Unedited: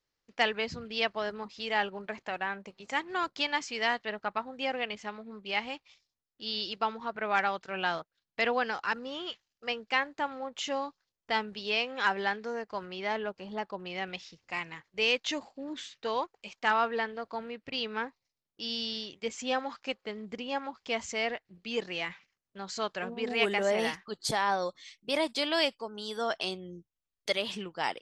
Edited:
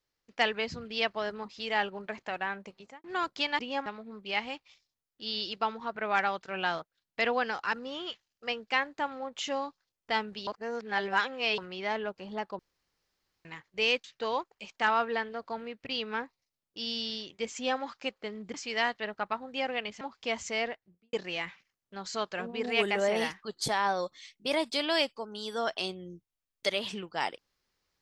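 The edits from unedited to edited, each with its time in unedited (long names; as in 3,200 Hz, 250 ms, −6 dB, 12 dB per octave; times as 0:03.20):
0:02.73–0:03.04: fade out and dull
0:03.59–0:05.06: swap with 0:20.37–0:20.64
0:11.67–0:12.78: reverse
0:13.79–0:14.65: fill with room tone
0:15.24–0:15.87: remove
0:21.22–0:21.76: fade out and dull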